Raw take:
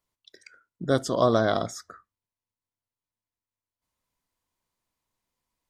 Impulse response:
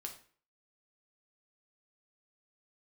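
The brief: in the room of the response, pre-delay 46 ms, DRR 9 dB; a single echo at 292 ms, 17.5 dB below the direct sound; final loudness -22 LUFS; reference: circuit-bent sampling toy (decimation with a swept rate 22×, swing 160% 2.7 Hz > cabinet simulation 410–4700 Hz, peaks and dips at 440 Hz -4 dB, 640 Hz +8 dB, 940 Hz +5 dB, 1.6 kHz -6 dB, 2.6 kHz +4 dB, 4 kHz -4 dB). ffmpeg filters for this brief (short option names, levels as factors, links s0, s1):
-filter_complex "[0:a]aecho=1:1:292:0.133,asplit=2[s0][s1];[1:a]atrim=start_sample=2205,adelay=46[s2];[s1][s2]afir=irnorm=-1:irlink=0,volume=0.501[s3];[s0][s3]amix=inputs=2:normalize=0,acrusher=samples=22:mix=1:aa=0.000001:lfo=1:lforange=35.2:lforate=2.7,highpass=410,equalizer=f=440:t=q:w=4:g=-4,equalizer=f=640:t=q:w=4:g=8,equalizer=f=940:t=q:w=4:g=5,equalizer=f=1600:t=q:w=4:g=-6,equalizer=f=2600:t=q:w=4:g=4,equalizer=f=4000:t=q:w=4:g=-4,lowpass=f=4700:w=0.5412,lowpass=f=4700:w=1.3066,volume=1.06"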